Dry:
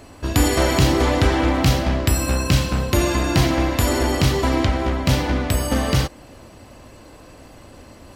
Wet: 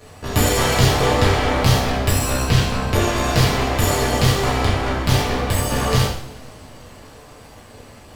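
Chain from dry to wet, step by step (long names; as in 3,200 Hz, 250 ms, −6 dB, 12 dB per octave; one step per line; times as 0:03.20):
0:02.44–0:03.16: high-shelf EQ 6,700 Hz −9 dB
half-wave rectification
coupled-rooms reverb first 0.58 s, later 4.4 s, from −27 dB, DRR −5 dB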